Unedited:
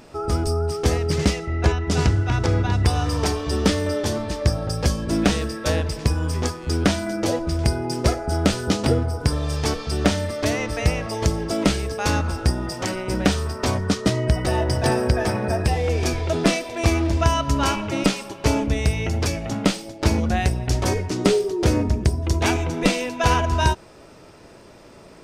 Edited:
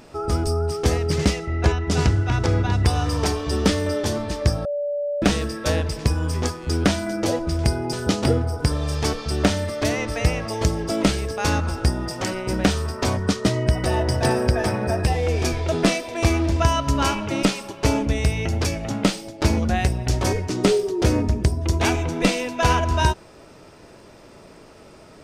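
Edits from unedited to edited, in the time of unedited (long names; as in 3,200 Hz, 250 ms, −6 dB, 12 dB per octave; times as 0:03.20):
0:04.65–0:05.22: beep over 580 Hz −22 dBFS
0:07.93–0:08.54: remove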